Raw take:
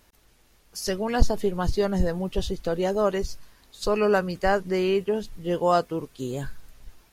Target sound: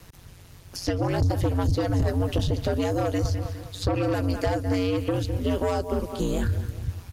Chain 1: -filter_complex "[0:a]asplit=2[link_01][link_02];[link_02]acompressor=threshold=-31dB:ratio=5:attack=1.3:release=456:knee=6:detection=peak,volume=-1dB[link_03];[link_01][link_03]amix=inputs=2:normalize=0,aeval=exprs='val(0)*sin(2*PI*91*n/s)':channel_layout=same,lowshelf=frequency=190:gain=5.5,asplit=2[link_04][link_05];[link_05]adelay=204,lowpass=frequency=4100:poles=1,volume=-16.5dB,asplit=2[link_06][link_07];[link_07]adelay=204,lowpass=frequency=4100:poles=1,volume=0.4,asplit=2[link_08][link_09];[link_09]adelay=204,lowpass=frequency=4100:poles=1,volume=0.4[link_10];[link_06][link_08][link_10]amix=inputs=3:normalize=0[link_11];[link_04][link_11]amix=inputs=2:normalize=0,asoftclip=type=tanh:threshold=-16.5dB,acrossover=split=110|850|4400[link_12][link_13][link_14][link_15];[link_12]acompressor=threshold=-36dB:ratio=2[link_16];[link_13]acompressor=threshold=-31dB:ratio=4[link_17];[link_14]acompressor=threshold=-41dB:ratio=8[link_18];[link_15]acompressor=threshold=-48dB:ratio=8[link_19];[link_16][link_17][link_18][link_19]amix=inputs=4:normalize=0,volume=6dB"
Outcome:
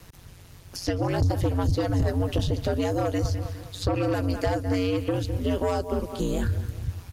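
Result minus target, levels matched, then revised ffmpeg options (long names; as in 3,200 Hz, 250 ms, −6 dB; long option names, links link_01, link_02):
downward compressor: peak gain reduction +8 dB
-filter_complex "[0:a]asplit=2[link_01][link_02];[link_02]acompressor=threshold=-21dB:ratio=5:attack=1.3:release=456:knee=6:detection=peak,volume=-1dB[link_03];[link_01][link_03]amix=inputs=2:normalize=0,aeval=exprs='val(0)*sin(2*PI*91*n/s)':channel_layout=same,lowshelf=frequency=190:gain=5.5,asplit=2[link_04][link_05];[link_05]adelay=204,lowpass=frequency=4100:poles=1,volume=-16.5dB,asplit=2[link_06][link_07];[link_07]adelay=204,lowpass=frequency=4100:poles=1,volume=0.4,asplit=2[link_08][link_09];[link_09]adelay=204,lowpass=frequency=4100:poles=1,volume=0.4[link_10];[link_06][link_08][link_10]amix=inputs=3:normalize=0[link_11];[link_04][link_11]amix=inputs=2:normalize=0,asoftclip=type=tanh:threshold=-16.5dB,acrossover=split=110|850|4400[link_12][link_13][link_14][link_15];[link_12]acompressor=threshold=-36dB:ratio=2[link_16];[link_13]acompressor=threshold=-31dB:ratio=4[link_17];[link_14]acompressor=threshold=-41dB:ratio=8[link_18];[link_15]acompressor=threshold=-48dB:ratio=8[link_19];[link_16][link_17][link_18][link_19]amix=inputs=4:normalize=0,volume=6dB"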